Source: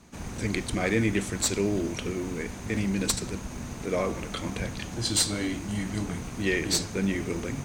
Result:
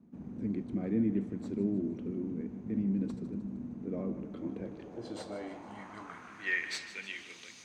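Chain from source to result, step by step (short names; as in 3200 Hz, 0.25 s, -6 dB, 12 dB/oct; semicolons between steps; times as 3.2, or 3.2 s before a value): band-pass sweep 230 Hz -> 4400 Hz, 4.15–7.6; split-band echo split 320 Hz, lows 0.597 s, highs 0.154 s, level -13.5 dB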